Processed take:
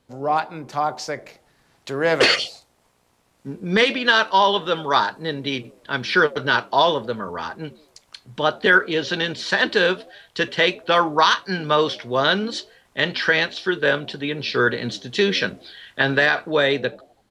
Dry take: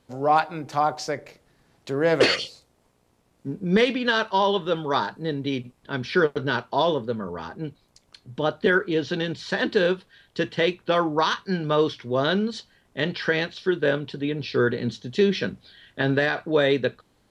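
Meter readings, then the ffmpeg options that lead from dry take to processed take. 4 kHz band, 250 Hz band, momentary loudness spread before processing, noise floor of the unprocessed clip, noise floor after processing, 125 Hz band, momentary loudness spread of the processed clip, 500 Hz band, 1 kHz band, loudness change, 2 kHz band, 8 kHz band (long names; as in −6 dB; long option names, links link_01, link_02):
+7.0 dB, −1.0 dB, 11 LU, −65 dBFS, −63 dBFS, −1.5 dB, 14 LU, +1.0 dB, +4.5 dB, +4.0 dB, +7.5 dB, can't be measured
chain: -filter_complex "[0:a]acrossover=split=690[link_01][link_02];[link_01]asplit=5[link_03][link_04][link_05][link_06][link_07];[link_04]adelay=83,afreqshift=75,volume=-16dB[link_08];[link_05]adelay=166,afreqshift=150,volume=-23.1dB[link_09];[link_06]adelay=249,afreqshift=225,volume=-30.3dB[link_10];[link_07]adelay=332,afreqshift=300,volume=-37.4dB[link_11];[link_03][link_08][link_09][link_10][link_11]amix=inputs=5:normalize=0[link_12];[link_02]dynaudnorm=framelen=470:gausssize=5:maxgain=11dB[link_13];[link_12][link_13]amix=inputs=2:normalize=0,volume=-1.5dB"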